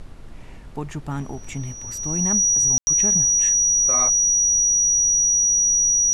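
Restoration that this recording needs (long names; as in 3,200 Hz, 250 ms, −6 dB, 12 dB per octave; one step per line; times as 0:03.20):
notch filter 5,800 Hz, Q 30
ambience match 0:02.78–0:02.87
noise reduction from a noise print 30 dB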